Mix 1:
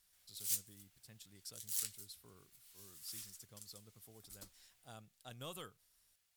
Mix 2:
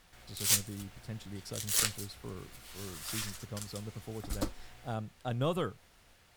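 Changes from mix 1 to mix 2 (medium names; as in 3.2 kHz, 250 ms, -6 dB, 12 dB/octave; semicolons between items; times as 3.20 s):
background +10.5 dB; master: remove pre-emphasis filter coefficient 0.9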